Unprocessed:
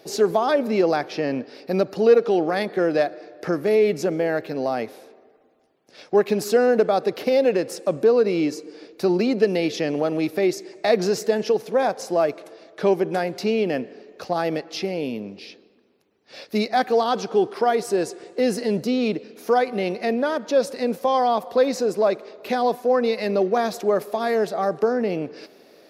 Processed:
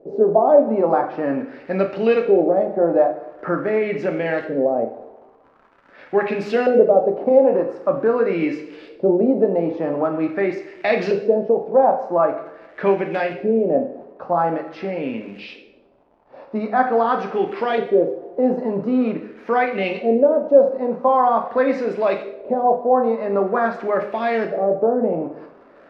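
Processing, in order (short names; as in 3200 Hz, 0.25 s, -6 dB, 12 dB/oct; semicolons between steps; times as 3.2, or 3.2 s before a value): crackle 200/s -35 dBFS; LFO low-pass saw up 0.45 Hz 460–3000 Hz; two-slope reverb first 0.58 s, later 1.5 s, from -27 dB, DRR 2.5 dB; gain -1 dB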